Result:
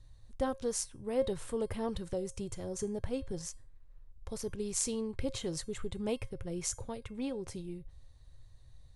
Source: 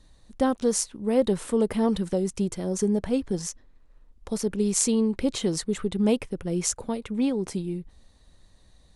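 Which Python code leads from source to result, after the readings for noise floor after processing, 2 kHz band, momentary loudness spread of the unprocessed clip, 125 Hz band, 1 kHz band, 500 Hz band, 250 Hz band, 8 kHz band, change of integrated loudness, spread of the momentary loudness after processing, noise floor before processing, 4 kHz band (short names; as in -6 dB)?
-56 dBFS, -9.0 dB, 8 LU, -10.5 dB, -9.5 dB, -9.5 dB, -14.0 dB, -9.0 dB, -11.0 dB, 9 LU, -58 dBFS, -9.0 dB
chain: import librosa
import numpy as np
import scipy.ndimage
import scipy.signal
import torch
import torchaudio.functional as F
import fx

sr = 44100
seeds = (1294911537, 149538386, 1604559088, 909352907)

y = fx.low_shelf_res(x, sr, hz=150.0, db=8.5, q=3.0)
y = fx.comb_fb(y, sr, f0_hz=540.0, decay_s=0.32, harmonics='all', damping=0.0, mix_pct=60)
y = y * 10.0 ** (-1.5 / 20.0)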